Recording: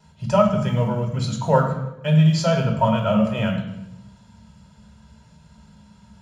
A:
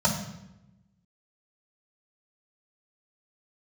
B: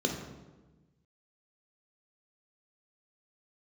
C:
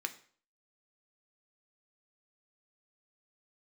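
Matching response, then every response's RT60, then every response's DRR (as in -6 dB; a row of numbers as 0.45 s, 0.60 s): A; 0.85 s, 1.2 s, 0.50 s; -3.0 dB, 2.0 dB, 6.5 dB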